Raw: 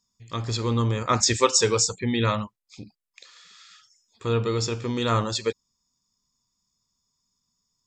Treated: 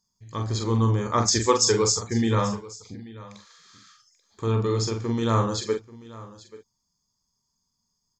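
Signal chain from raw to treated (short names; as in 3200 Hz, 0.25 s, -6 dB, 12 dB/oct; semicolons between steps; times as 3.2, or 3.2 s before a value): bell 2900 Hz -10 dB 0.9 oct; doubler 42 ms -6 dB; echo 0.802 s -19 dB; speed mistake 25 fps video run at 24 fps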